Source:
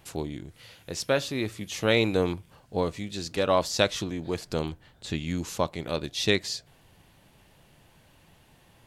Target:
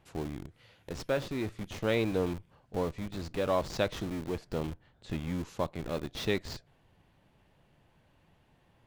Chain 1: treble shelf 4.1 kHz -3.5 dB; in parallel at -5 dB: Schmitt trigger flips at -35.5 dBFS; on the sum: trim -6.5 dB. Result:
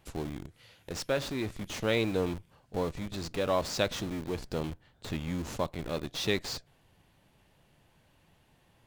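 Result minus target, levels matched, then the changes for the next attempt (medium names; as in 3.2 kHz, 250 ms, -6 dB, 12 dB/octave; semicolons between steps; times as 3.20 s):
8 kHz band +6.0 dB
change: treble shelf 4.1 kHz -14 dB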